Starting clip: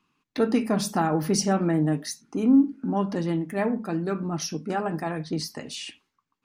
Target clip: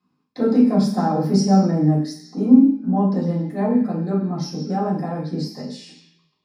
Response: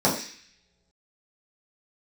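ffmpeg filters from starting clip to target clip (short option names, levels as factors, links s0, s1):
-filter_complex "[1:a]atrim=start_sample=2205,asetrate=41013,aresample=44100[s0];[0:a][s0]afir=irnorm=-1:irlink=0,volume=0.133"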